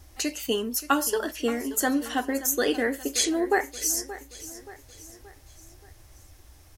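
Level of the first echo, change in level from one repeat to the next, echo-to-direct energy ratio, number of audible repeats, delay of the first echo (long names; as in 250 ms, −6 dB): −15.5 dB, −6.5 dB, −14.5 dB, 4, 577 ms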